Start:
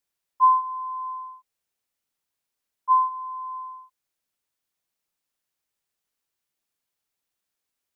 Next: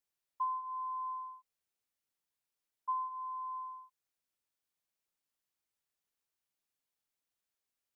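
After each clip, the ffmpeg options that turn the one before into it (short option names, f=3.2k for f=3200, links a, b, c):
-af "acompressor=threshold=-26dB:ratio=10,volume=-7dB"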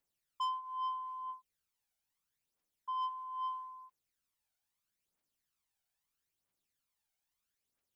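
-af "aphaser=in_gain=1:out_gain=1:delay=1.4:decay=0.59:speed=0.77:type=triangular,asoftclip=type=tanh:threshold=-32dB"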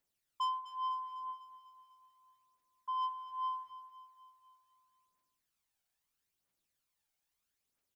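-af "aecho=1:1:250|500|750|1000|1250|1500:0.224|0.13|0.0753|0.0437|0.0253|0.0147,volume=1dB"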